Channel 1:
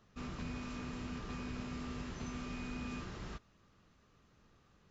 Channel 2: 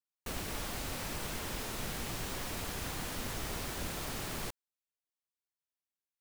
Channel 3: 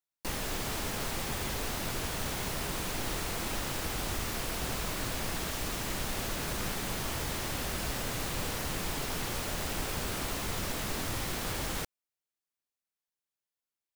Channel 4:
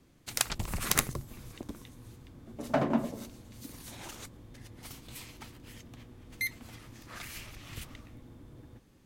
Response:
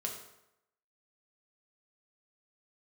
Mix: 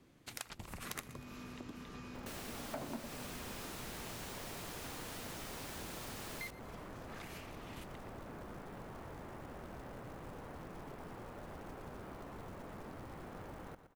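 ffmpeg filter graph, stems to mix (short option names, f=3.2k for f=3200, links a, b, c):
-filter_complex "[0:a]adelay=650,volume=0dB[a];[1:a]adelay=2000,volume=3dB[b];[2:a]lowpass=1.2k,acrusher=bits=5:mode=log:mix=0:aa=0.000001,adelay=1900,volume=-4dB,asplit=2[c][d];[d]volume=-14dB[e];[3:a]bass=f=250:g=-1,treble=f=4k:g=-5,volume=0dB,asplit=2[f][g];[g]volume=-19.5dB[h];[e][h]amix=inputs=2:normalize=0,aecho=0:1:119|238|357|476:1|0.27|0.0729|0.0197[i];[a][b][c][f][i]amix=inputs=5:normalize=0,lowshelf=f=81:g=-8.5,acompressor=threshold=-48dB:ratio=2.5"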